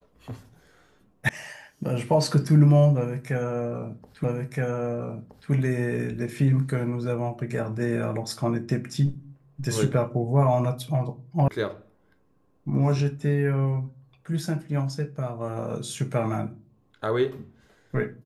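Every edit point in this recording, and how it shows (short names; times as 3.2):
1.29 sound cut off
4.24 repeat of the last 1.27 s
11.48 sound cut off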